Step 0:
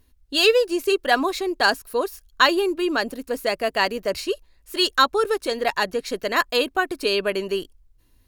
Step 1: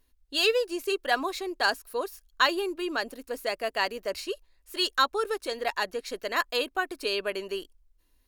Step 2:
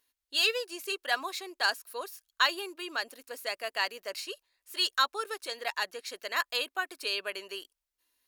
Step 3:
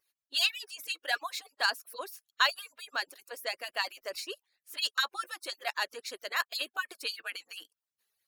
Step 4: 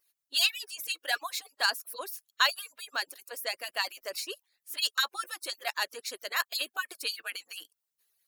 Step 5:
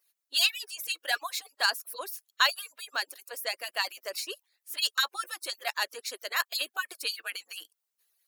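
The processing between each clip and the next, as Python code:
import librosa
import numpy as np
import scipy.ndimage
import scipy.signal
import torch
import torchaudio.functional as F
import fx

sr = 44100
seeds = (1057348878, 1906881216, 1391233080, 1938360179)

y1 = fx.peak_eq(x, sr, hz=120.0, db=-12.5, octaves=1.8)
y1 = y1 * librosa.db_to_amplitude(-6.0)
y2 = fx.highpass(y1, sr, hz=1300.0, slope=6)
y3 = fx.hpss_only(y2, sr, part='percussive')
y4 = fx.high_shelf(y3, sr, hz=6400.0, db=8.5)
y5 = scipy.signal.sosfilt(scipy.signal.butter(2, 310.0, 'highpass', fs=sr, output='sos'), y4)
y5 = y5 * librosa.db_to_amplitude(1.0)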